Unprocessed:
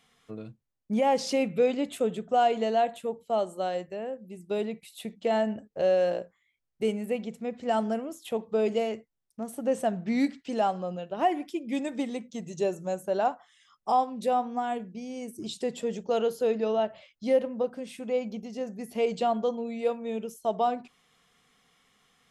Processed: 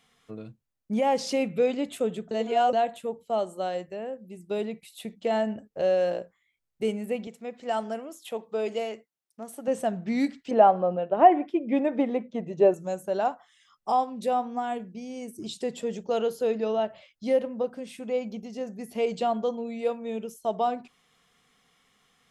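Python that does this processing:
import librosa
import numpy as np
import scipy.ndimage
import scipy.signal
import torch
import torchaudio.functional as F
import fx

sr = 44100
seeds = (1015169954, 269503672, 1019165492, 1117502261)

y = fx.highpass(x, sr, hz=450.0, slope=6, at=(7.27, 9.68))
y = fx.curve_eq(y, sr, hz=(120.0, 620.0, 2400.0, 7600.0), db=(0, 10, 1, -21), at=(10.51, 12.74))
y = fx.edit(y, sr, fx.reverse_span(start_s=2.31, length_s=0.42), tone=tone)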